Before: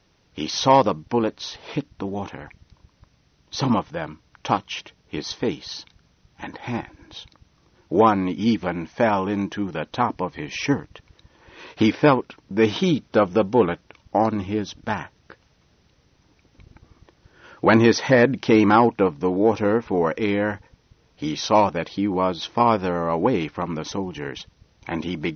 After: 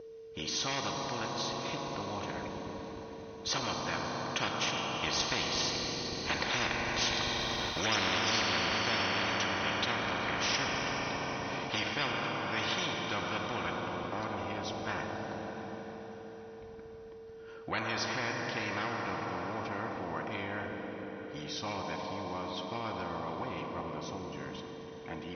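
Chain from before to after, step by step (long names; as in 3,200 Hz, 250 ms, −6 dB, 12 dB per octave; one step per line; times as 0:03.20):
source passing by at 0:07.58, 7 m/s, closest 2 metres
steady tone 450 Hz −59 dBFS
notch comb filter 430 Hz
on a send at −4 dB: convolution reverb RT60 5.1 s, pre-delay 36 ms
on the sum: every bin compressed towards the loudest bin 10 to 1
level −6.5 dB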